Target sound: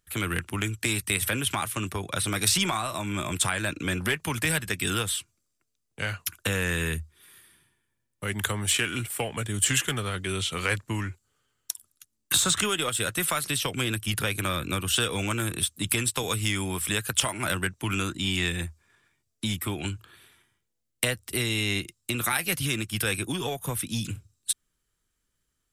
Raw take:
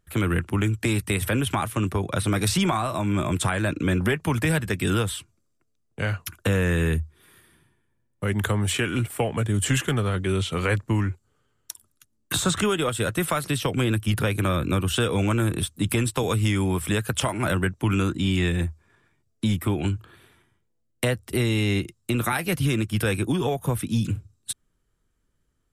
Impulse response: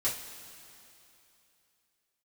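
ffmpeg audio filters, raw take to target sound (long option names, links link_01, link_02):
-af "aeval=exprs='0.316*(cos(1*acos(clip(val(0)/0.316,-1,1)))-cos(1*PI/2))+0.02*(cos(3*acos(clip(val(0)/0.316,-1,1)))-cos(3*PI/2))+0.00251*(cos(8*acos(clip(val(0)/0.316,-1,1)))-cos(8*PI/2))':channel_layout=same,tiltshelf=frequency=1500:gain=-6.5"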